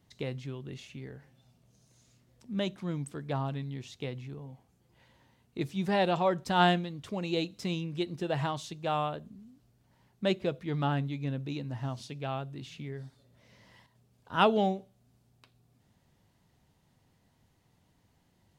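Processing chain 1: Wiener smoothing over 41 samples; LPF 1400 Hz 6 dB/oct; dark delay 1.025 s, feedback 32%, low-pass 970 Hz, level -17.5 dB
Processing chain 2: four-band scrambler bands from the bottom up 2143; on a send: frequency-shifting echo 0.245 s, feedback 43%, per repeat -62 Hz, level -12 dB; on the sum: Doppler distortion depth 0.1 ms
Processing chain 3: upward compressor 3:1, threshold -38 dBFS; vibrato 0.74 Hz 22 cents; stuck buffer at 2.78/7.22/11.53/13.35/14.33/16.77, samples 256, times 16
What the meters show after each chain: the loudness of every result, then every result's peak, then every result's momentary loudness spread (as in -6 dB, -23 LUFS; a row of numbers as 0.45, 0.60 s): -34.0, -30.0, -33.0 LUFS; -12.5, -9.5, -11.0 dBFS; 19, 19, 24 LU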